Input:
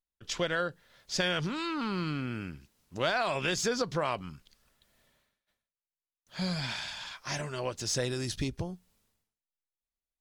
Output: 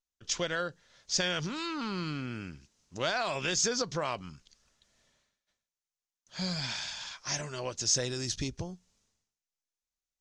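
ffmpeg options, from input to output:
-af "lowpass=f=6.4k:t=q:w=3.1,volume=-2.5dB"

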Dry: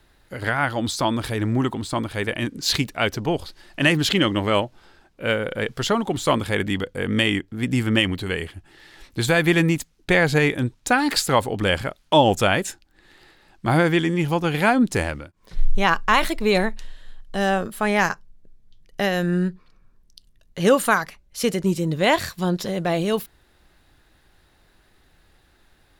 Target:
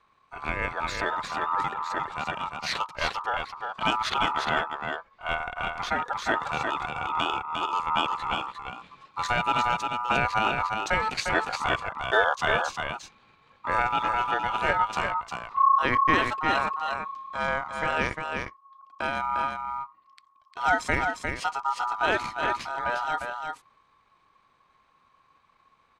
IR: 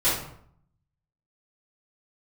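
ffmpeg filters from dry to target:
-filter_complex "[0:a]adynamicsmooth=sensitivity=4.5:basefreq=7.4k,aeval=exprs='val(0)*sin(2*PI*1500*n/s)':c=same,asetrate=32097,aresample=44100,atempo=1.37395,asplit=2[a][b];[b]aecho=0:1:353:0.562[c];[a][c]amix=inputs=2:normalize=0,volume=-4dB"

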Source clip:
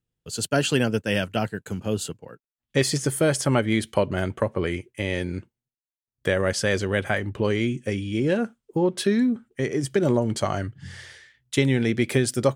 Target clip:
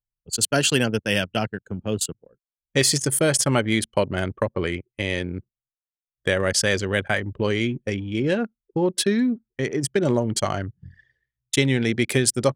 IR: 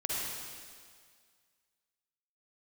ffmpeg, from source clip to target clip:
-af "anlmdn=25.1,highshelf=f=2.7k:g=9"

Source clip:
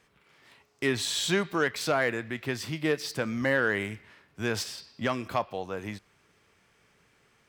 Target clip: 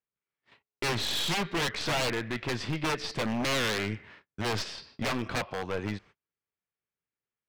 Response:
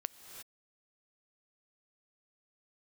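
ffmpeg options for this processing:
-af "agate=range=-36dB:threshold=-55dB:ratio=16:detection=peak,aeval=exprs='0.2*(cos(1*acos(clip(val(0)/0.2,-1,1)))-cos(1*PI/2))+0.02*(cos(8*acos(clip(val(0)/0.2,-1,1)))-cos(8*PI/2))':c=same,lowpass=4.1k,aeval=exprs='0.0531*(abs(mod(val(0)/0.0531+3,4)-2)-1)':c=same,volume=3.5dB"

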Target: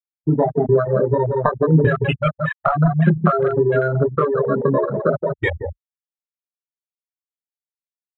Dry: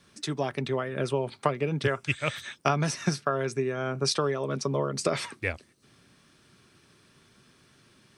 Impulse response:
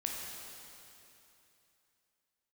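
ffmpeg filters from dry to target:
-filter_complex "[0:a]equalizer=f=1.2k:w=0.32:g=11.5,asoftclip=type=tanh:threshold=-8dB,asplit=2[a][b];[b]adelay=169,lowpass=f=1.9k:p=1,volume=-6.5dB,asplit=2[c][d];[d]adelay=169,lowpass=f=1.9k:p=1,volume=0.19,asplit=2[e][f];[f]adelay=169,lowpass=f=1.9k:p=1,volume=0.19[g];[a][c][e][g]amix=inputs=4:normalize=0,asplit=2[h][i];[1:a]atrim=start_sample=2205,lowpass=3.3k[j];[i][j]afir=irnorm=-1:irlink=0,volume=-21.5dB[k];[h][k]amix=inputs=2:normalize=0,acompressor=threshold=-22dB:ratio=16,lowpass=7.9k,bass=f=250:g=8,treble=f=4k:g=-12,asplit=2[l][m];[m]adelay=25,volume=-3.5dB[n];[l][n]amix=inputs=2:normalize=0,afftfilt=real='re*gte(hypot(re,im),0.2)':imag='im*gte(hypot(re,im),0.2)':win_size=1024:overlap=0.75,afwtdn=0.02,volume=8dB"

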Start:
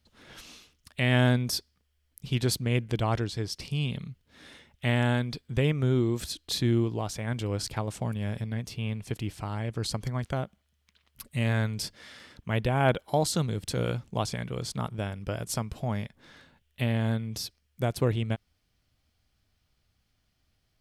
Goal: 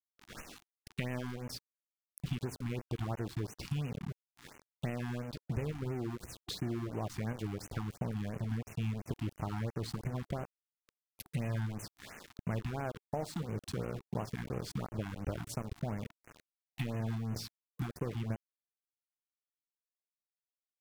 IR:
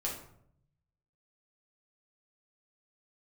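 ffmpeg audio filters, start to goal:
-filter_complex "[0:a]acompressor=threshold=-39dB:ratio=16,asplit=2[a][b];[1:a]atrim=start_sample=2205,lowshelf=f=77:g=5.5[c];[b][c]afir=irnorm=-1:irlink=0,volume=-14.5dB[d];[a][d]amix=inputs=2:normalize=0,aeval=exprs='val(0)*gte(abs(val(0)),0.00668)':c=same,highshelf=f=2.9k:g=-9.5,afftfilt=real='re*(1-between(b*sr/1024,460*pow(4300/460,0.5+0.5*sin(2*PI*2.9*pts/sr))/1.41,460*pow(4300/460,0.5+0.5*sin(2*PI*2.9*pts/sr))*1.41))':imag='im*(1-between(b*sr/1024,460*pow(4300/460,0.5+0.5*sin(2*PI*2.9*pts/sr))/1.41,460*pow(4300/460,0.5+0.5*sin(2*PI*2.9*pts/sr))*1.41))':win_size=1024:overlap=0.75,volume=5dB"

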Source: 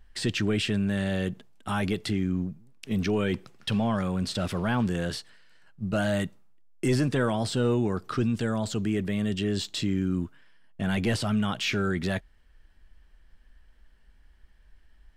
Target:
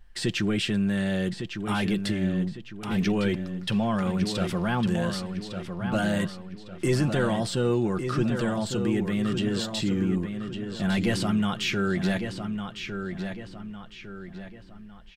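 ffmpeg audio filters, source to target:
-filter_complex "[0:a]aecho=1:1:5.7:0.4,asplit=2[a][b];[b]adelay=1155,lowpass=f=4.9k:p=1,volume=-7dB,asplit=2[c][d];[d]adelay=1155,lowpass=f=4.9k:p=1,volume=0.42,asplit=2[e][f];[f]adelay=1155,lowpass=f=4.9k:p=1,volume=0.42,asplit=2[g][h];[h]adelay=1155,lowpass=f=4.9k:p=1,volume=0.42,asplit=2[i][j];[j]adelay=1155,lowpass=f=4.9k:p=1,volume=0.42[k];[c][e][g][i][k]amix=inputs=5:normalize=0[l];[a][l]amix=inputs=2:normalize=0"

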